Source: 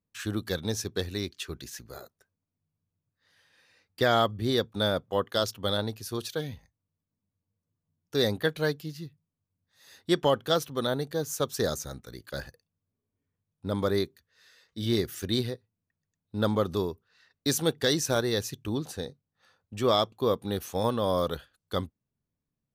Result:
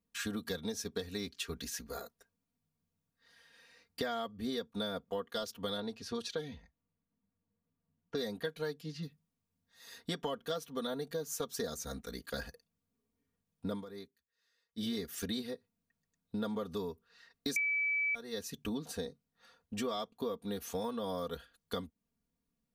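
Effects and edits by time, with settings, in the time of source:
0:05.80–0:09.03: low-pass that shuts in the quiet parts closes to 2,200 Hz, open at −25 dBFS
0:13.73–0:14.85: duck −20.5 dB, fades 0.12 s
0:17.56–0:18.15: beep over 2,300 Hz −9 dBFS
whole clip: comb filter 4.3 ms, depth 89%; downward compressor 6 to 1, threshold −34 dBFS; level −1 dB

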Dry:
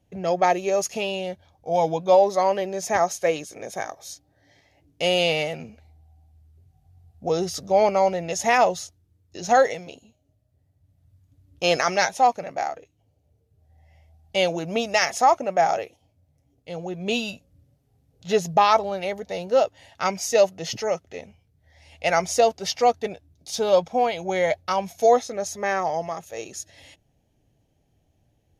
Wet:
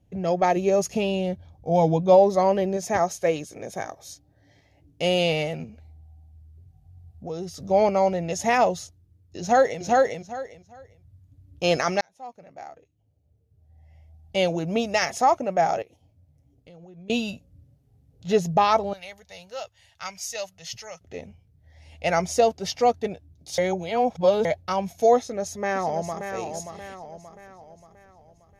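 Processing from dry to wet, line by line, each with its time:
0:00.56–0:02.77: low-shelf EQ 350 Hz +7 dB
0:05.64–0:07.60: downward compressor 1.5 to 1, threshold −46 dBFS
0:09.40–0:09.82: delay throw 400 ms, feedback 20%, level −1 dB
0:12.01–0:14.38: fade in
0:15.82–0:17.10: downward compressor 12 to 1, threshold −45 dBFS
0:18.93–0:21.01: guitar amp tone stack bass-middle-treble 10-0-10
0:23.58–0:24.45: reverse
0:25.17–0:26.32: delay throw 580 ms, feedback 45%, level −7.5 dB
whole clip: low-shelf EQ 340 Hz +9.5 dB; level −3.5 dB

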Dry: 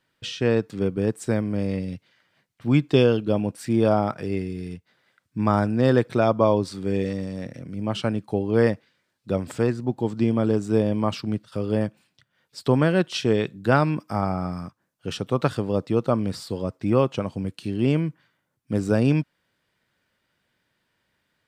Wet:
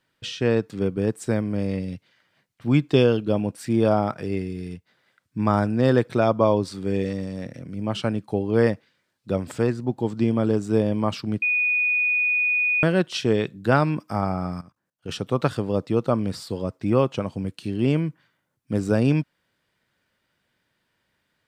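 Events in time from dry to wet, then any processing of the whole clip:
0:11.42–0:12.83: beep over 2,470 Hz −18.5 dBFS
0:14.61–0:15.09: output level in coarse steps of 16 dB

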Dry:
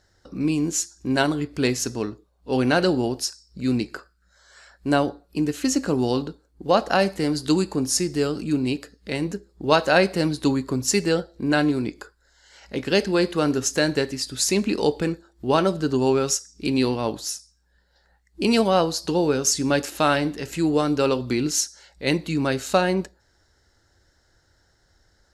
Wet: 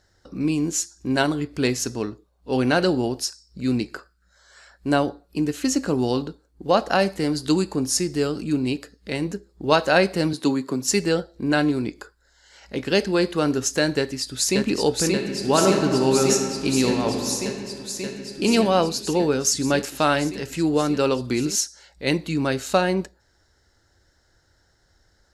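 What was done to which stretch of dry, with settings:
0:10.33–0:10.88: high-pass filter 150 Hz 24 dB per octave
0:13.97–0:14.59: delay throw 580 ms, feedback 85%, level −2.5 dB
0:15.09–0:18.48: thrown reverb, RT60 2.2 s, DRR 3.5 dB

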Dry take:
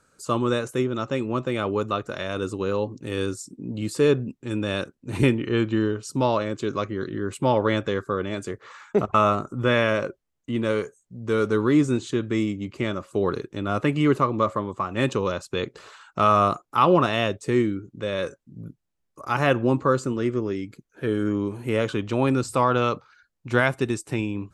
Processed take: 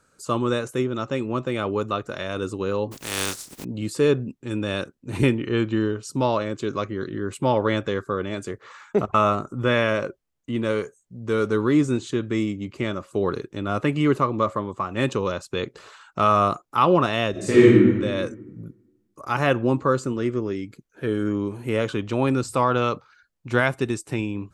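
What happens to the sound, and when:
0:02.91–0:03.63: compressing power law on the bin magnitudes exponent 0.29
0:17.31–0:17.95: thrown reverb, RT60 1.3 s, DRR −10 dB

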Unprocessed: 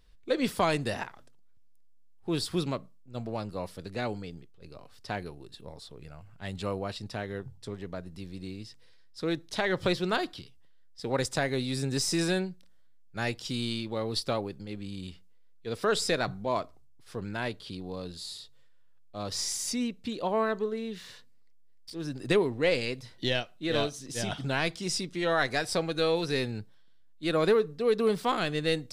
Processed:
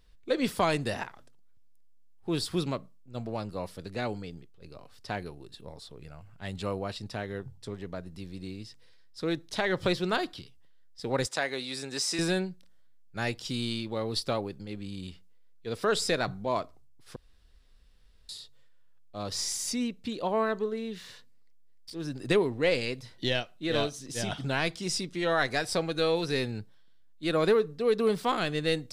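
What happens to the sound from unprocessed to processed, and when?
0:11.27–0:12.19: meter weighting curve A
0:17.16–0:18.29: fill with room tone

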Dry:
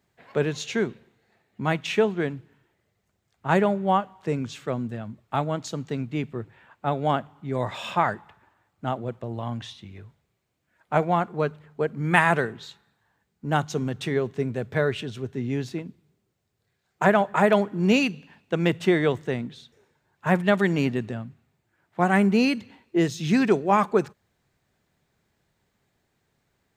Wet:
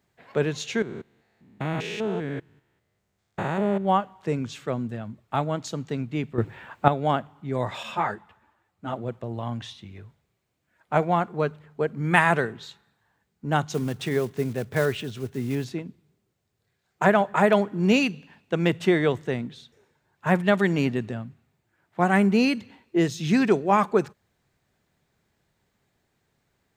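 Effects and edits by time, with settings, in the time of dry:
0:00.82–0:03.85: spectrum averaged block by block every 200 ms
0:06.38–0:06.88: clip gain +10.5 dB
0:07.83–0:08.94: string-ensemble chorus
0:13.74–0:15.66: one scale factor per block 5 bits

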